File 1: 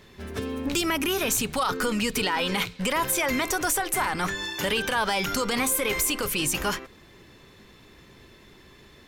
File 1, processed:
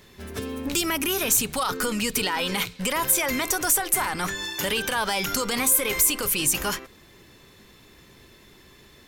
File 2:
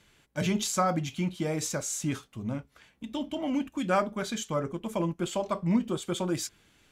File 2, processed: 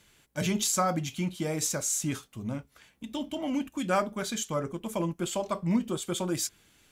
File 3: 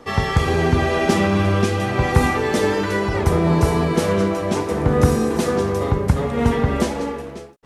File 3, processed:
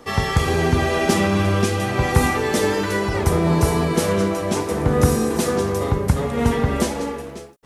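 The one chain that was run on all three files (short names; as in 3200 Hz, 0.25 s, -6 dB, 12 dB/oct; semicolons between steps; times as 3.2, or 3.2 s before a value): high shelf 6500 Hz +9.5 dB; gain -1 dB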